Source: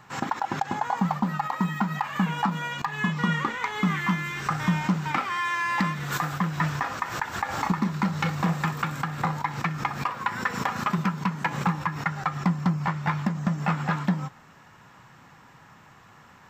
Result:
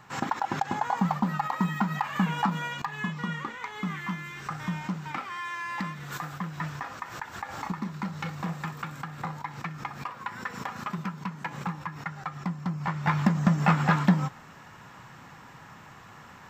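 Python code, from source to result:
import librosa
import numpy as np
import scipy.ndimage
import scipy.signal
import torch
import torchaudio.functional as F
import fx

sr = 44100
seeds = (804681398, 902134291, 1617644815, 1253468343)

y = fx.gain(x, sr, db=fx.line((2.57, -1.0), (3.28, -8.0), (12.64, -8.0), (13.24, 3.5)))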